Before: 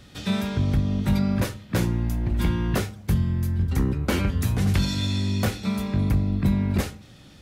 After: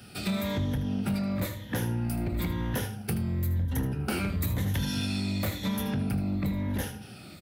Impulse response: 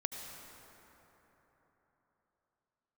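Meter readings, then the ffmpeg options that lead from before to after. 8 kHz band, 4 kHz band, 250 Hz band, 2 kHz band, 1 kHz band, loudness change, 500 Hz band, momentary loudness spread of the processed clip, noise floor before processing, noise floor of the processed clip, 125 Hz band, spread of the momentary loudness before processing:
-3.0 dB, -4.0 dB, -5.0 dB, -3.5 dB, -4.5 dB, -6.0 dB, -4.5 dB, 3 LU, -48 dBFS, -46 dBFS, -7.0 dB, 4 LU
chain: -filter_complex "[0:a]afftfilt=real='re*pow(10,10/40*sin(2*PI*(1.1*log(max(b,1)*sr/1024/100)/log(2)-(-0.99)*(pts-256)/sr)))':imag='im*pow(10,10/40*sin(2*PI*(1.1*log(max(b,1)*sr/1024/100)/log(2)-(-0.99)*(pts-256)/sr)))':win_size=1024:overlap=0.75,adynamicequalizer=threshold=0.00631:dfrequency=400:dqfactor=3.9:tfrequency=400:tqfactor=3.9:attack=5:release=100:ratio=0.375:range=2:mode=cutabove:tftype=bell,highpass=f=55:w=0.5412,highpass=f=55:w=1.3066,acrossover=split=160|5900[a][b][c];[b]dynaudnorm=f=210:g=3:m=3.5dB[d];[a][d][c]amix=inputs=3:normalize=0,highshelf=f=9.5k:g=-5,acompressor=threshold=-26dB:ratio=5,aexciter=amount=2.4:drive=9.2:freq=9.3k,asoftclip=type=hard:threshold=-24dB,bandreject=f=1.1k:w=9.4,asplit=2[e][f];[f]aecho=0:1:78:0.237[g];[e][g]amix=inputs=2:normalize=0"

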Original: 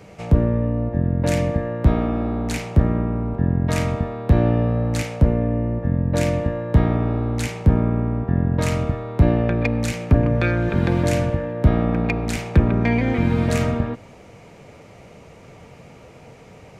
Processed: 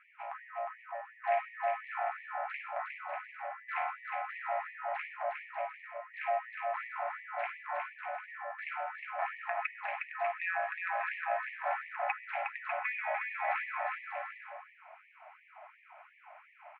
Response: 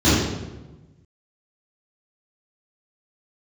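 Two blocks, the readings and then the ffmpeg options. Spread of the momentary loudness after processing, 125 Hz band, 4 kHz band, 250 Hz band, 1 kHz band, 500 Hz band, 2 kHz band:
21 LU, under -40 dB, -20.0 dB, under -40 dB, -3.0 dB, -15.0 dB, -5.0 dB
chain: -af "aecho=1:1:360|594|746.1|845|909.2:0.631|0.398|0.251|0.158|0.1,highpass=f=300:t=q:w=0.5412,highpass=f=300:t=q:w=1.307,lowpass=f=2.2k:t=q:w=0.5176,lowpass=f=2.2k:t=q:w=0.7071,lowpass=f=2.2k:t=q:w=1.932,afreqshift=110,afftfilt=real='re*gte(b*sr/1024,560*pow(1800/560,0.5+0.5*sin(2*PI*2.8*pts/sr)))':imag='im*gte(b*sr/1024,560*pow(1800/560,0.5+0.5*sin(2*PI*2.8*pts/sr)))':win_size=1024:overlap=0.75,volume=-5dB"

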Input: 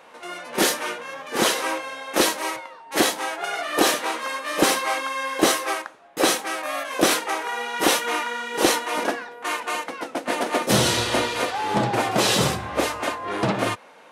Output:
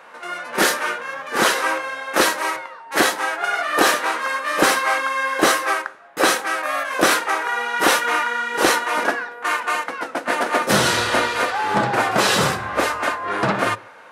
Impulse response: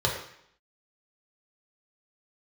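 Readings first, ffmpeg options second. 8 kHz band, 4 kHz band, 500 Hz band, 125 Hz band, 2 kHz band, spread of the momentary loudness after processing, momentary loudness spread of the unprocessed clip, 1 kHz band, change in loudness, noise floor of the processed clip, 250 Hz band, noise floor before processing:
+0.5 dB, +1.0 dB, +2.0 dB, -1.0 dB, +7.0 dB, 8 LU, 9 LU, +5.0 dB, +3.5 dB, -41 dBFS, 0.0 dB, -48 dBFS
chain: -filter_complex "[0:a]equalizer=f=1.5k:w=1.3:g=8.5,asplit=2[a][b];[1:a]atrim=start_sample=2205[c];[b][c]afir=irnorm=-1:irlink=0,volume=-27.5dB[d];[a][d]amix=inputs=2:normalize=0"

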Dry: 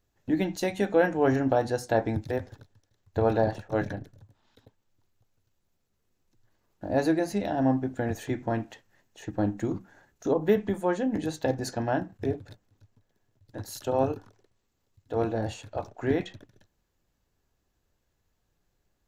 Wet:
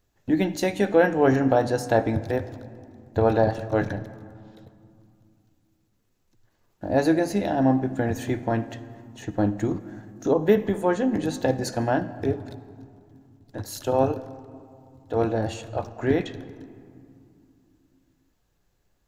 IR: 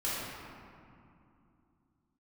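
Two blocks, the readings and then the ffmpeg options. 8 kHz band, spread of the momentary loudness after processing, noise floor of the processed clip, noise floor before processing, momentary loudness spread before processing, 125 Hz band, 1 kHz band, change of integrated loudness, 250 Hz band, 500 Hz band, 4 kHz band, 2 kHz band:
+4.0 dB, 20 LU, -69 dBFS, -76 dBFS, 13 LU, +4.5 dB, +4.0 dB, +4.0 dB, +4.5 dB, +4.0 dB, +4.0 dB, +4.0 dB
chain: -filter_complex "[0:a]asplit=2[a][b];[1:a]atrim=start_sample=2205,adelay=57[c];[b][c]afir=irnorm=-1:irlink=0,volume=-22dB[d];[a][d]amix=inputs=2:normalize=0,volume=4dB"

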